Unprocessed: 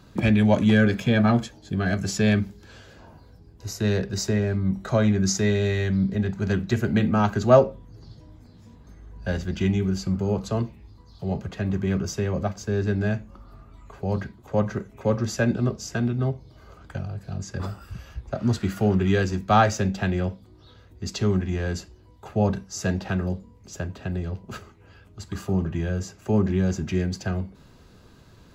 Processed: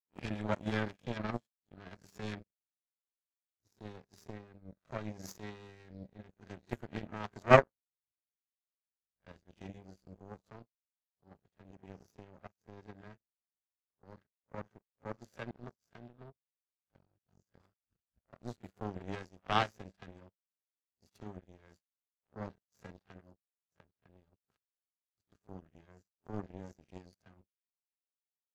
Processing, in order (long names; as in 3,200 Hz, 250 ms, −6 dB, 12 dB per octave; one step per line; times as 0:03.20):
peak hold with a rise ahead of every peak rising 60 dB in 0.32 s
power curve on the samples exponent 3